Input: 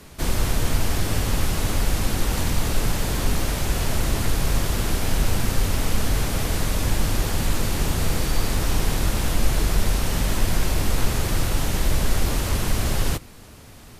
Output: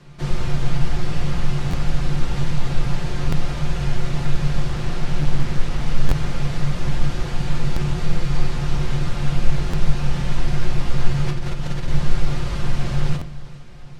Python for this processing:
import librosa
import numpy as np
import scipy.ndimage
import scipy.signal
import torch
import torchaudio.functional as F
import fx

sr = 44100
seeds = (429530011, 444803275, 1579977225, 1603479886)

y = scipy.signal.sosfilt(scipy.signal.butter(2, 4900.0, 'lowpass', fs=sr, output='sos'), x)
y = fx.peak_eq(y, sr, hz=140.0, db=14.5, octaves=0.25)
y = y + 0.46 * np.pad(y, (int(5.7 * sr / 1000.0), 0))[:len(y)]
y = fx.over_compress(y, sr, threshold_db=-21.0, ratio=-1.0, at=(11.27, 11.88))
y = fx.echo_feedback(y, sr, ms=406, feedback_pct=59, wet_db=-18.0)
y = fx.room_shoebox(y, sr, seeds[0], volume_m3=50.0, walls='mixed', distance_m=0.38)
y = fx.buffer_glitch(y, sr, at_s=(1.7, 3.29, 6.08, 7.73, 9.7, 13.18), block=512, repeats=2)
y = fx.doppler_dist(y, sr, depth_ms=0.61, at=(4.69, 5.83))
y = F.gain(torch.from_numpy(y), -5.5).numpy()